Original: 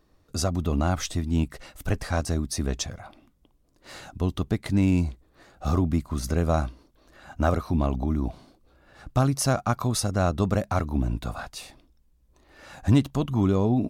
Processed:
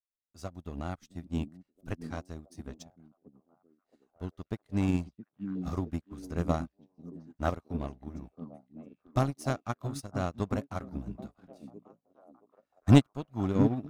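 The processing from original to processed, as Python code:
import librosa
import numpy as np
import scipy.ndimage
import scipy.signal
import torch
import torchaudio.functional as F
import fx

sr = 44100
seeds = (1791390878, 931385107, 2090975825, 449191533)

p1 = fx.power_curve(x, sr, exponent=1.4)
p2 = 10.0 ** (-24.0 / 20.0) * np.tanh(p1 / 10.0 ** (-24.0 / 20.0))
p3 = p1 + (p2 * librosa.db_to_amplitude(-12.0))
p4 = fx.echo_stepped(p3, sr, ms=670, hz=210.0, octaves=0.7, feedback_pct=70, wet_db=-0.5)
p5 = fx.upward_expand(p4, sr, threshold_db=-40.0, expansion=2.5)
y = p5 * librosa.db_to_amplitude(3.0)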